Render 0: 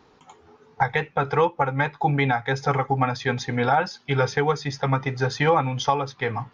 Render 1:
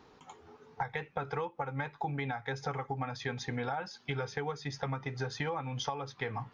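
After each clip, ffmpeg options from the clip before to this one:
-af "acompressor=threshold=-30dB:ratio=6,volume=-3dB"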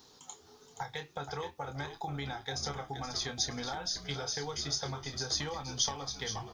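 -filter_complex "[0:a]aexciter=amount=5.9:drive=7.1:freq=3.5k,asplit=2[a][b];[b]adelay=28,volume=-8dB[c];[a][c]amix=inputs=2:normalize=0,asplit=6[d][e][f][g][h][i];[e]adelay=474,afreqshift=-64,volume=-9dB[j];[f]adelay=948,afreqshift=-128,volume=-15.7dB[k];[g]adelay=1422,afreqshift=-192,volume=-22.5dB[l];[h]adelay=1896,afreqshift=-256,volume=-29.2dB[m];[i]adelay=2370,afreqshift=-320,volume=-36dB[n];[d][j][k][l][m][n]amix=inputs=6:normalize=0,volume=-4.5dB"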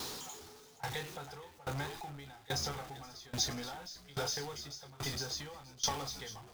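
-af "aeval=exprs='val(0)+0.5*0.0178*sgn(val(0))':c=same,aeval=exprs='val(0)*pow(10,-23*if(lt(mod(1.2*n/s,1),2*abs(1.2)/1000),1-mod(1.2*n/s,1)/(2*abs(1.2)/1000),(mod(1.2*n/s,1)-2*abs(1.2)/1000)/(1-2*abs(1.2)/1000))/20)':c=same"

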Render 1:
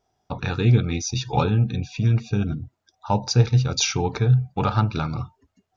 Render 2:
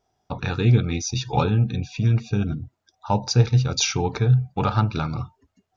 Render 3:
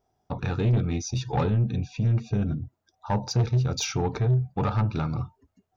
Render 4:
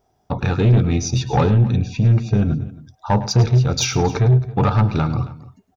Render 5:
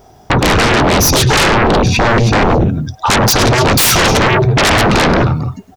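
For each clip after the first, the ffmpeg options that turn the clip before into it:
-af anull
-af "equalizer=f=3.8k:w=0.35:g=-7,asoftclip=type=tanh:threshold=-17.5dB"
-af "aecho=1:1:106|270:0.178|0.106,volume=8.5dB"
-af "aeval=exprs='0.447*sin(PI/2*7.94*val(0)/0.447)':c=same"

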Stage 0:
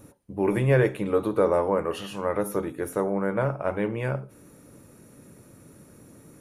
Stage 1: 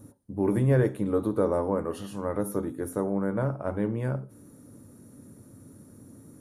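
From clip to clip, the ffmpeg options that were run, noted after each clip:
-af "equalizer=f=100:t=o:w=0.67:g=9,equalizer=f=250:t=o:w=0.67:g=9,equalizer=f=2.5k:t=o:w=0.67:g=-10,equalizer=f=10k:t=o:w=0.67:g=4,volume=-5dB"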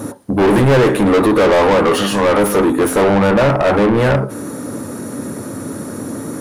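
-filter_complex "[0:a]asplit=2[a][b];[b]highpass=f=720:p=1,volume=33dB,asoftclip=type=tanh:threshold=-12dB[c];[a][c]amix=inputs=2:normalize=0,lowpass=f=3k:p=1,volume=-6dB,volume=7.5dB"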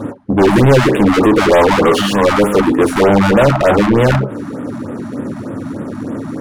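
-af "adynamicsmooth=sensitivity=4.5:basefreq=1.8k,afftfilt=real='re*(1-between(b*sr/1024,400*pow(5400/400,0.5+0.5*sin(2*PI*3.3*pts/sr))/1.41,400*pow(5400/400,0.5+0.5*sin(2*PI*3.3*pts/sr))*1.41))':imag='im*(1-between(b*sr/1024,400*pow(5400/400,0.5+0.5*sin(2*PI*3.3*pts/sr))/1.41,400*pow(5400/400,0.5+0.5*sin(2*PI*3.3*pts/sr))*1.41))':win_size=1024:overlap=0.75,volume=3dB"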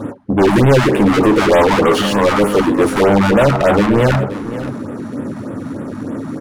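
-af "aecho=1:1:528:0.2,volume=-1.5dB"

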